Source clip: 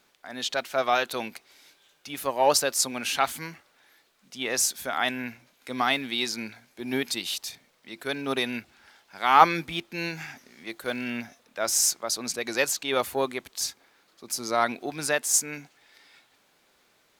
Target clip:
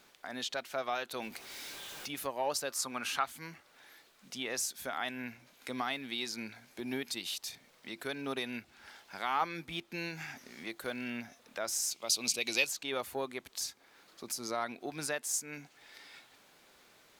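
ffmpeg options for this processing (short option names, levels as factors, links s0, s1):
-filter_complex "[0:a]asettb=1/sr,asplit=3[s0][s1][s2];[s0]atrim=end=1.224[s3];[s1]atrim=start=1.22:end=2.08,asetpts=PTS-STARTPTS,afade=t=in:d=0.004:c=qsin,afade=t=out:st=0.856:d=0.004:c=qsin,aeval=exprs='val(0)+0.5*0.00668*sgn(val(0))':c=same[s4];[s2]atrim=start=2.076[s5];[s3][s4]acrossfade=d=0.004:c1=hsin:c2=qsin[s6];[s6][s5]acrossfade=d=0.004:c1=qsin:c2=hsin,asettb=1/sr,asplit=3[s7][s8][s9];[s7]atrim=end=2.704[s10];[s8]atrim=start=2.7:end=3.24,asetpts=PTS-STARTPTS,afade=t=in:d=0.004:c=qsin,afade=t=out:st=0.536:d=0.004:c=qsin,equalizer=f=1200:t=o:w=0.74:g=11[s11];[s9]atrim=start=3.236[s12];[s10][s11]acrossfade=d=0.004:c1=hsin:c2=qsin[s13];[s13][s12]acrossfade=d=0.004:c1=qsin:c2=hsin,acompressor=threshold=0.00501:ratio=2,asettb=1/sr,asplit=3[s14][s15][s16];[s14]atrim=end=11.914[s17];[s15]atrim=start=11.91:end=12.67,asetpts=PTS-STARTPTS,afade=t=in:d=0.004:c=qsin,afade=t=out:st=0.756:d=0.004:c=qsin,highshelf=f=2100:t=q:w=3:g=7[s18];[s16]atrim=start=12.666[s19];[s17][s18]acrossfade=d=0.004:c1=hsin:c2=qsin[s20];[s20][s19]acrossfade=d=0.004:c1=qsin:c2=hsin,volume=1.33"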